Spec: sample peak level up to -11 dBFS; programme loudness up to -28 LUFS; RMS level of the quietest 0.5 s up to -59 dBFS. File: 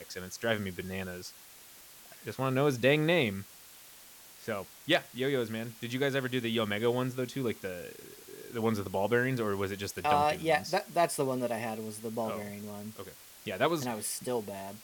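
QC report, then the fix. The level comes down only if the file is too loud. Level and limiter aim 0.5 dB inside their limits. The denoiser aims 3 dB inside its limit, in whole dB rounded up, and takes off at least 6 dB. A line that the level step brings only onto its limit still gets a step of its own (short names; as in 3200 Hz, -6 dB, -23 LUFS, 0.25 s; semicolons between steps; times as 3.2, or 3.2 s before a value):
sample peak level -12.5 dBFS: OK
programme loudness -31.5 LUFS: OK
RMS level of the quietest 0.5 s -53 dBFS: fail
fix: denoiser 9 dB, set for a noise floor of -53 dBFS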